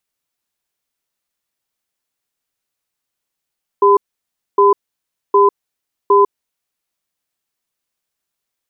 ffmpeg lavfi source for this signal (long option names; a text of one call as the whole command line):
ffmpeg -f lavfi -i "aevalsrc='0.335*(sin(2*PI*402*t)+sin(2*PI*1010*t))*clip(min(mod(t,0.76),0.15-mod(t,0.76))/0.005,0,1)':duration=2.76:sample_rate=44100" out.wav